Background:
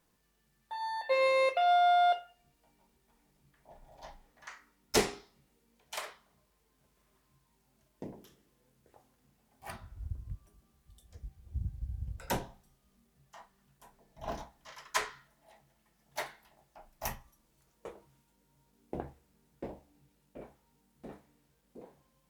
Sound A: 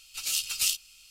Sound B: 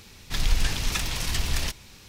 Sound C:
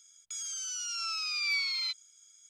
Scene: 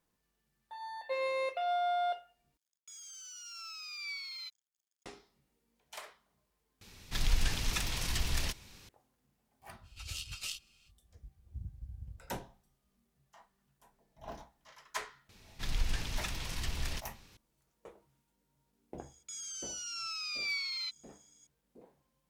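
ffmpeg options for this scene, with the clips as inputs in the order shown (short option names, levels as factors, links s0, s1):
-filter_complex "[3:a]asplit=2[s0][s1];[2:a]asplit=2[s2][s3];[0:a]volume=0.447[s4];[s0]aeval=exprs='sgn(val(0))*max(abs(val(0))-0.00211,0)':c=same[s5];[1:a]aemphasis=mode=reproduction:type=75kf[s6];[s3]highshelf=f=4100:g=-4[s7];[s1]acrusher=bits=9:mode=log:mix=0:aa=0.000001[s8];[s4]asplit=3[s9][s10][s11];[s9]atrim=end=2.574[s12];[s5]atrim=end=2.49,asetpts=PTS-STARTPTS,volume=0.299[s13];[s10]atrim=start=5.056:end=6.814[s14];[s2]atrim=end=2.08,asetpts=PTS-STARTPTS,volume=0.473[s15];[s11]atrim=start=8.886[s16];[s6]atrim=end=1.1,asetpts=PTS-STARTPTS,volume=0.531,afade=t=in:d=0.05,afade=t=out:st=1.05:d=0.05,adelay=9820[s17];[s7]atrim=end=2.08,asetpts=PTS-STARTPTS,volume=0.335,afade=t=in:d=0.004:c=hsin,afade=t=out:st=2.076:d=0.004:c=hsin,adelay=15290[s18];[s8]atrim=end=2.49,asetpts=PTS-STARTPTS,volume=0.562,afade=t=in:d=0.004:c=hsin,afade=t=out:st=2.486:d=0.004:c=hsin,adelay=18980[s19];[s12][s13]acrossfade=d=0.004:c1=hsin:c2=hsin[s20];[s20][s14]acrossfade=d=0.004:c1=hsin:c2=hsin[s21];[s21][s15]acrossfade=d=0.004:c1=hsin:c2=hsin[s22];[s22][s16]acrossfade=d=0.004:c1=hsin:c2=hsin[s23];[s23][s17][s18][s19]amix=inputs=4:normalize=0"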